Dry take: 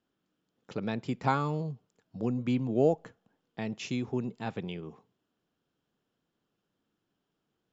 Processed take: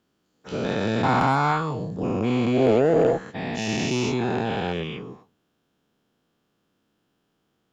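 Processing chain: spectral dilation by 0.48 s; added harmonics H 5 -22 dB, 8 -29 dB, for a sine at -8 dBFS

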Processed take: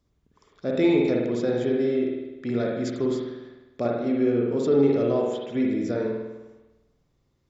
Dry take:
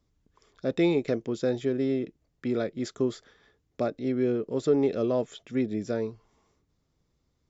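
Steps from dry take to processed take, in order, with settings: spring tank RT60 1.1 s, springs 50 ms, chirp 30 ms, DRR -1.5 dB

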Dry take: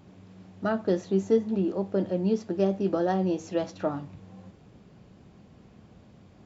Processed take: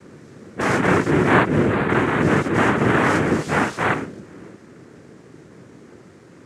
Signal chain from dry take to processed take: spectral dilation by 0.12 s; noise vocoder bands 3; gain +4 dB

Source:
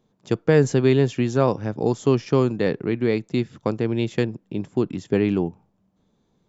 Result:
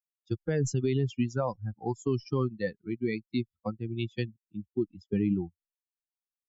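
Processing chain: per-bin expansion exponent 3; low shelf 99 Hz +7.5 dB; limiter -18.5 dBFS, peak gain reduction 12 dB

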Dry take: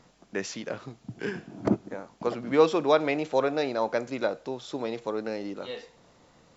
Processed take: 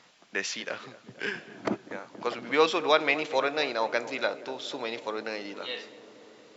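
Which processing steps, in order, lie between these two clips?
HPF 260 Hz 6 dB/oct; bell 2800 Hz +12.5 dB 2.8 oct; darkening echo 0.237 s, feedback 83%, low-pass 1200 Hz, level -15 dB; gain -4.5 dB

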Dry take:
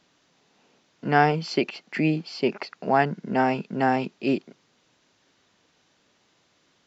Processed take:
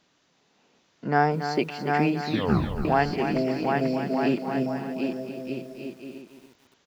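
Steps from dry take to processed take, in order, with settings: 1.07–1.59 bell 2900 Hz -13 dB 0.67 oct; 3.36–4.03 spectral repair 670–4500 Hz; bouncing-ball echo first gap 0.75 s, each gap 0.65×, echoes 5; 2.22 tape stop 0.63 s; lo-fi delay 0.281 s, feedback 35%, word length 8-bit, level -9 dB; gain -2 dB

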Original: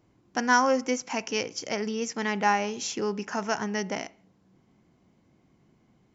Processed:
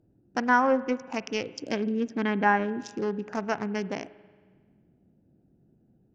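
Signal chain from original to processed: Wiener smoothing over 41 samples; 1.53–2.83 small resonant body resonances 280/1600/3200 Hz, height 10 dB -> 12 dB, ringing for 40 ms; treble ducked by the level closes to 2000 Hz, closed at -22.5 dBFS; spring tank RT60 1.6 s, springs 45 ms, chirp 60 ms, DRR 17 dB; gain +1 dB

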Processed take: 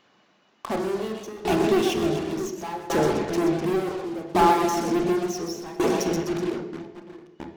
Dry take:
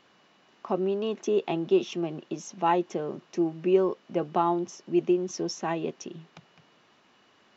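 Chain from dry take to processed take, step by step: one diode to ground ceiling -26 dBFS; split-band echo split 460 Hz, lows 0.669 s, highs 0.126 s, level -5.5 dB; in parallel at -9 dB: fuzz box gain 44 dB, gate -41 dBFS; on the sum: reverb removal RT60 0.51 s; tremolo saw down 0.69 Hz, depth 95%; on a send at -4 dB: reverb RT60 0.90 s, pre-delay 28 ms

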